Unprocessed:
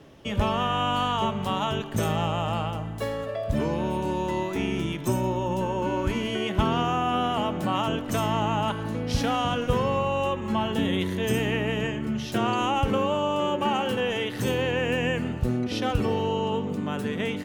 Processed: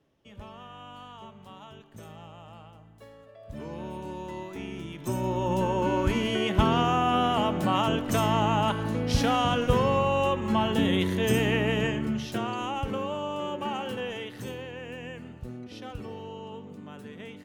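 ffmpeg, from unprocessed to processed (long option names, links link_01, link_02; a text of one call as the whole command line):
ffmpeg -i in.wav -af "volume=1dB,afade=type=in:start_time=3.37:duration=0.43:silence=0.316228,afade=type=in:start_time=4.92:duration=0.64:silence=0.281838,afade=type=out:start_time=11.97:duration=0.5:silence=0.398107,afade=type=out:start_time=14.02:duration=0.66:silence=0.446684" out.wav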